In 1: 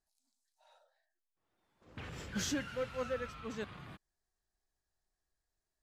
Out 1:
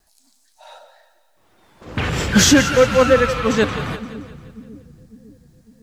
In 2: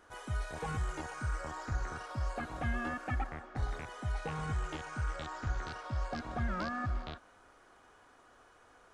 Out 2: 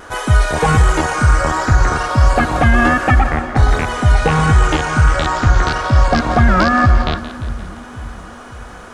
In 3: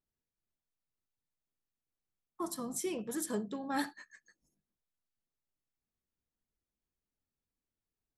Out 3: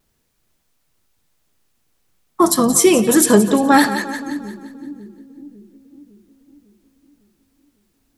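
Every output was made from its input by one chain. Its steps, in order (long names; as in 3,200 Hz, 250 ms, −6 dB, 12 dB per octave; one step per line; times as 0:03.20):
pitch vibrato 1.4 Hz 21 cents
echo with a time of its own for lows and highs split 330 Hz, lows 553 ms, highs 174 ms, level −13 dB
boost into a limiter +25.5 dB
level −1 dB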